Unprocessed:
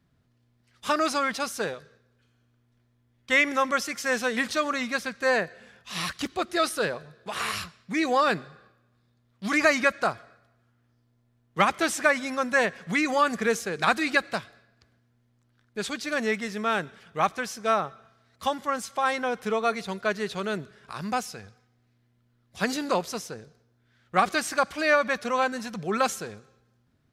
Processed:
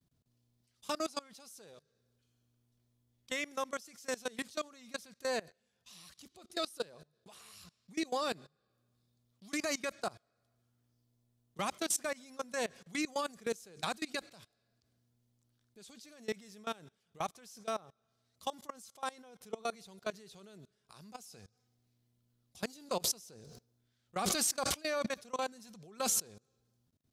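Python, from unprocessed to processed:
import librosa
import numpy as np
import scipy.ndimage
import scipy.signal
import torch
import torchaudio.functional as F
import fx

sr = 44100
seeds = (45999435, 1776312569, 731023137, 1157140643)

y = fx.sustainer(x, sr, db_per_s=47.0, at=(22.88, 26.21), fade=0.02)
y = fx.high_shelf(y, sr, hz=3700.0, db=10.5)
y = fx.level_steps(y, sr, step_db=23)
y = fx.peak_eq(y, sr, hz=1700.0, db=-9.5, octaves=1.4)
y = y * librosa.db_to_amplitude(-7.0)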